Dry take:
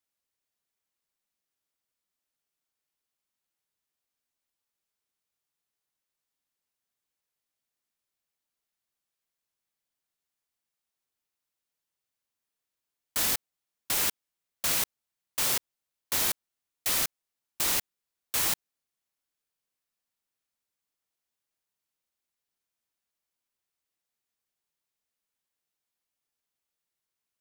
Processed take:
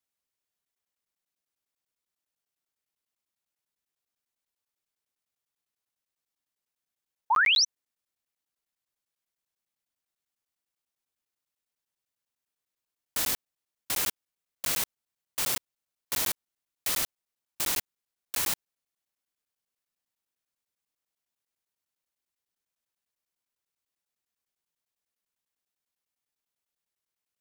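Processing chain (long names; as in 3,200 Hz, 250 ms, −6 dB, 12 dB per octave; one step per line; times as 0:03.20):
sound drawn into the spectrogram rise, 0:07.30–0:07.65, 820–6,200 Hz −20 dBFS
regular buffer underruns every 0.10 s, samples 512, zero, from 0:00.65
level −1.5 dB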